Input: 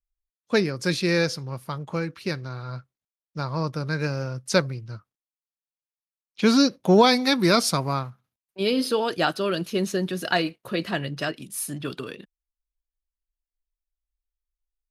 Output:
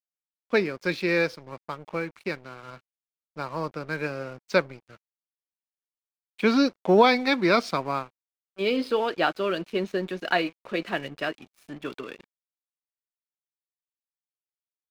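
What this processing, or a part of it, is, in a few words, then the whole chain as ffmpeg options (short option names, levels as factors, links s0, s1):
pocket radio on a weak battery: -af "highpass=250,lowpass=3100,aeval=exprs='sgn(val(0))*max(abs(val(0))-0.00447,0)':c=same,equalizer=f=2300:t=o:w=0.22:g=5"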